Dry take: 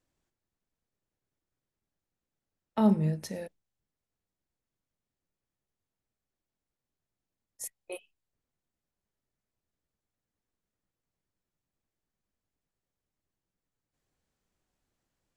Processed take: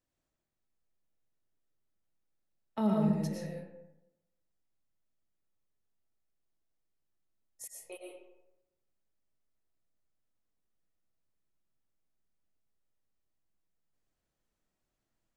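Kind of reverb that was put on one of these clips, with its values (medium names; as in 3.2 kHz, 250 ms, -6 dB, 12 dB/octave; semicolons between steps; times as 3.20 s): algorithmic reverb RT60 0.94 s, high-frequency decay 0.5×, pre-delay 75 ms, DRR -1 dB; trim -6.5 dB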